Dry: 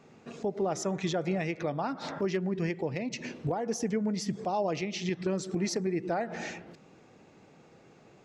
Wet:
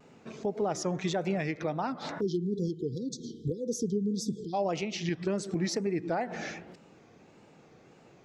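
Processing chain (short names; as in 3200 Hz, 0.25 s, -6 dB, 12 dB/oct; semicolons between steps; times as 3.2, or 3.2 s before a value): spectral delete 2.21–4.53, 510–3200 Hz; wow and flutter 110 cents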